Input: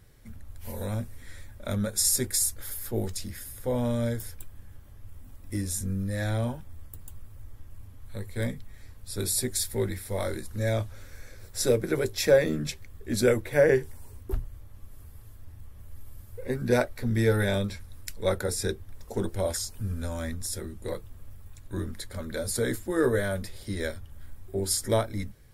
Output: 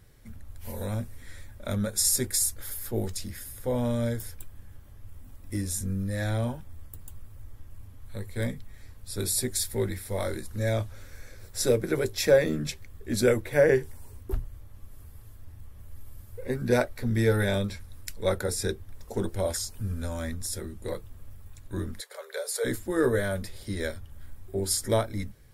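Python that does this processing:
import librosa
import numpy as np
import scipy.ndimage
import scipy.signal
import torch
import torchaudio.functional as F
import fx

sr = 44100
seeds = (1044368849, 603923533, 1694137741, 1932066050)

y = fx.cheby1_highpass(x, sr, hz=400.0, order=8, at=(21.99, 22.64), fade=0.02)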